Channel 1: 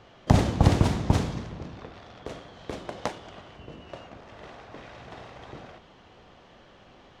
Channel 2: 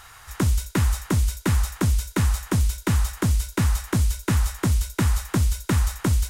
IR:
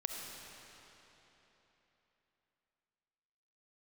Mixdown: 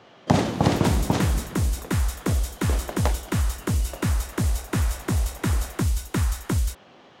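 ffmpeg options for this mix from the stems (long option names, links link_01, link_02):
-filter_complex "[0:a]highpass=150,volume=3dB[link_01];[1:a]adelay=450,volume=-2.5dB[link_02];[link_01][link_02]amix=inputs=2:normalize=0"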